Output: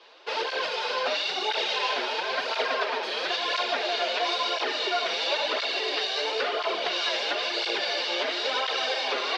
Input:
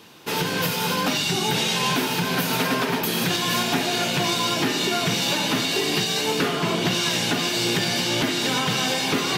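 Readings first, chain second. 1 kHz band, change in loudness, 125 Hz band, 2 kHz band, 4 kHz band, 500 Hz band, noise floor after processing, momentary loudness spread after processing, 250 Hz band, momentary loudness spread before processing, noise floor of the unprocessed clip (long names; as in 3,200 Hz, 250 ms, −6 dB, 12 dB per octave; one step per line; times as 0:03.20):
−2.5 dB, −4.5 dB, below −35 dB, −3.5 dB, −4.0 dB, −2.5 dB, −32 dBFS, 2 LU, −18.0 dB, 1 LU, −26 dBFS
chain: elliptic band-pass filter 450–4,600 Hz, stop band 80 dB
parametric band 610 Hz +7 dB 0.35 octaves
through-zero flanger with one copy inverted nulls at 0.98 Hz, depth 7.1 ms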